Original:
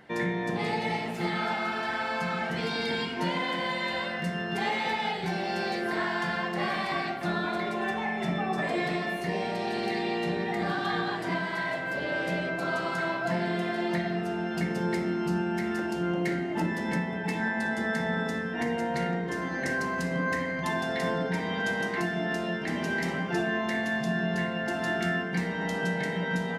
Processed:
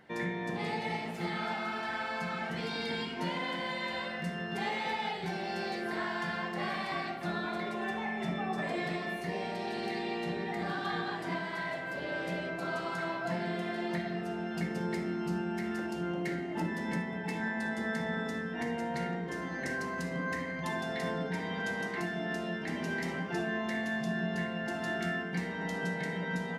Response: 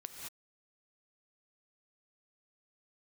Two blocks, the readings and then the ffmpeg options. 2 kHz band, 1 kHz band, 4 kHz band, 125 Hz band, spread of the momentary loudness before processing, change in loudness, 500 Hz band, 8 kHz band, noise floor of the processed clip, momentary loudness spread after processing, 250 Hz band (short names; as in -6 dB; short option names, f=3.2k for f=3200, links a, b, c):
-5.5 dB, -5.5 dB, -5.5 dB, -5.0 dB, 2 LU, -5.5 dB, -5.5 dB, -5.0 dB, -39 dBFS, 2 LU, -5.0 dB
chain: -filter_complex "[1:a]atrim=start_sample=2205,atrim=end_sample=3528[a];[0:a][a]afir=irnorm=-1:irlink=0"